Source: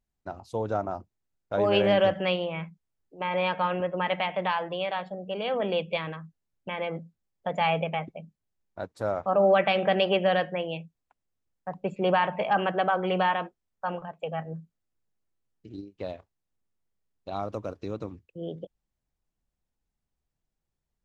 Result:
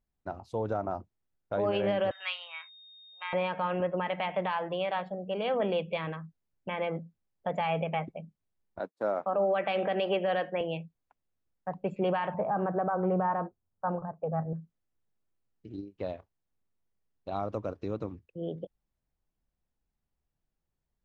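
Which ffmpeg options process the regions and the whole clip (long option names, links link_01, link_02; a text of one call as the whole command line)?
ffmpeg -i in.wav -filter_complex "[0:a]asettb=1/sr,asplit=3[link_01][link_02][link_03];[link_01]atrim=end=2.114[link_04];[link_02]atrim=start=2.11:end=3.33,asetpts=PTS-STARTPTS,afade=type=in:duration=0.004:curve=qsin,afade=type=out:start_time=1.216:duration=0.004:curve=qsin,highpass=frequency=1200:width=0.5412,highpass=frequency=1200:width=1.3066,aeval=exprs='val(0)+0.00501*sin(2*PI*3700*n/s)':channel_layout=same[link_05];[link_03]atrim=start=3.326[link_06];[link_04][link_05]acrossfade=duration=0.004:curve1=hsin:curve2=qsin[link_07];[link_07][link_06]acrossfade=duration=0.004:curve1=qsin:curve2=hsin,asettb=1/sr,asplit=3[link_08][link_09][link_10];[link_08]atrim=end=8.794[link_11];[link_09]atrim=start=8.79:end=10.61,asetpts=PTS-STARTPTS,afade=type=in:duration=0.004:curve=qsin,afade=type=out:start_time=1.816:duration=0.004:curve=qsin,agate=range=-33dB:threshold=-40dB:ratio=3:release=100:detection=peak,highpass=frequency=200:width=0.5412,highpass=frequency=200:width=1.3066[link_12];[link_10]atrim=start=10.606[link_13];[link_11][link_12]acrossfade=duration=0.004:curve1=hsin:curve2=qsin[link_14];[link_14][link_13]acrossfade=duration=0.004:curve1=qsin:curve2=hsin,asettb=1/sr,asplit=3[link_15][link_16][link_17];[link_15]atrim=end=12.344[link_18];[link_16]atrim=start=12.34:end=14.53,asetpts=PTS-STARTPTS,afade=type=in:duration=0.004:curve=qsin,afade=type=out:start_time=2.186:duration=0.004:curve=qsin,lowpass=frequency=1400:width=0.5412,lowpass=frequency=1400:width=1.3066,equalizer=frequency=100:width_type=o:width=1.3:gain=9.5[link_19];[link_17]atrim=start=14.526[link_20];[link_18][link_19]acrossfade=duration=0.004:curve1=hsin:curve2=qsin[link_21];[link_21][link_20]acrossfade=duration=0.004:curve1=qsin:curve2=hsin,highshelf=frequency=3900:gain=-10.5,alimiter=limit=-20.5dB:level=0:latency=1:release=95" out.wav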